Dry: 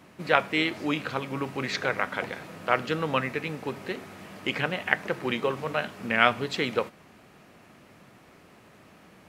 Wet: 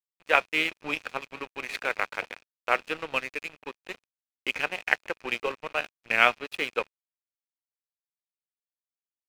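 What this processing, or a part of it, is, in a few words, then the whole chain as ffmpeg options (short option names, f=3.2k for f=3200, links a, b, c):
pocket radio on a weak battery: -filter_complex "[0:a]asplit=3[a][b][c];[a]afade=t=out:st=2.96:d=0.02[d];[b]adynamicequalizer=threshold=0.00891:dfrequency=1000:dqfactor=1.2:tfrequency=1000:tqfactor=1.2:attack=5:release=100:ratio=0.375:range=3.5:mode=cutabove:tftype=bell,afade=t=in:st=2.96:d=0.02,afade=t=out:st=3.55:d=0.02[e];[c]afade=t=in:st=3.55:d=0.02[f];[d][e][f]amix=inputs=3:normalize=0,highpass=350,lowpass=3.9k,aeval=exprs='sgn(val(0))*max(abs(val(0))-0.0178,0)':c=same,equalizer=f=2.5k:t=o:w=0.22:g=10.5"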